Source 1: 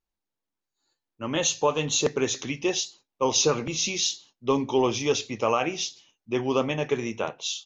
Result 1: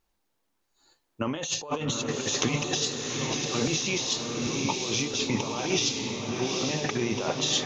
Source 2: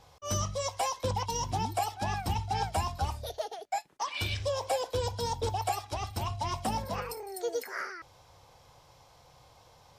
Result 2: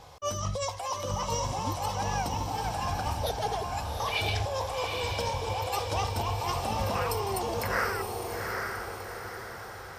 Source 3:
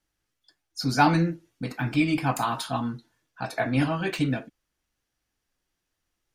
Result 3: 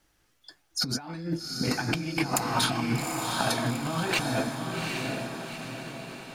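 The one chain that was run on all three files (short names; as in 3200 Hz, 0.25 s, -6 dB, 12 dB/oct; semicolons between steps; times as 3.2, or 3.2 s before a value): bell 720 Hz +2.5 dB 2.6 oct; negative-ratio compressor -34 dBFS, ratio -1; on a send: diffused feedback echo 0.798 s, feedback 50%, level -3 dB; on the sum: gain +2.5 dB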